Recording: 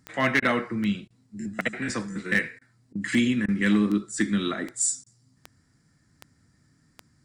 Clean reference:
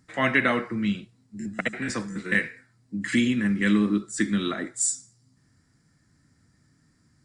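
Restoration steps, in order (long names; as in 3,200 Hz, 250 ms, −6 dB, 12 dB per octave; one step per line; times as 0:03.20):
clipped peaks rebuilt −14 dBFS
click removal
repair the gap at 0:00.40/0:01.08/0:02.59/0:02.93/0:03.46/0:05.04, 22 ms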